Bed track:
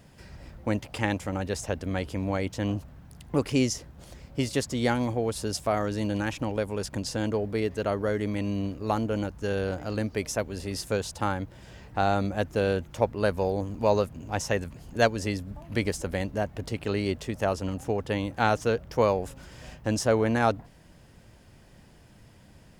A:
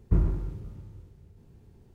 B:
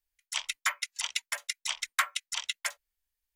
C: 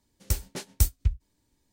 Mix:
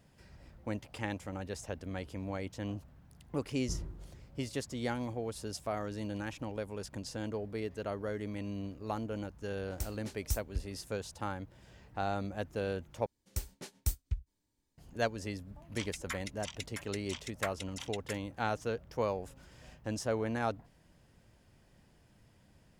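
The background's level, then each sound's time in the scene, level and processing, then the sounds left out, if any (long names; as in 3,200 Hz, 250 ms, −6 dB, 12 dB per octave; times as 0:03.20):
bed track −10 dB
0:03.57: mix in A −16 dB
0:09.50: mix in C −12 dB
0:13.06: overwrite with C −10 dB
0:15.44: mix in B −11.5 dB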